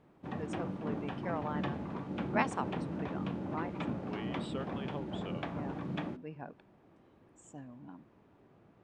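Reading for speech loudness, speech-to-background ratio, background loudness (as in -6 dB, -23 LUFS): -43.0 LUFS, -4.0 dB, -39.0 LUFS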